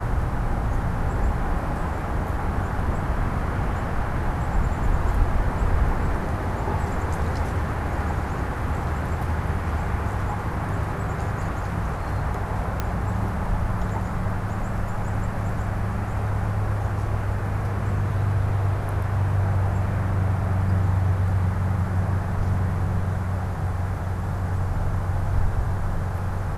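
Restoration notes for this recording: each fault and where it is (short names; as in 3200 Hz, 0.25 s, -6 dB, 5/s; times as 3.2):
12.8 pop -11 dBFS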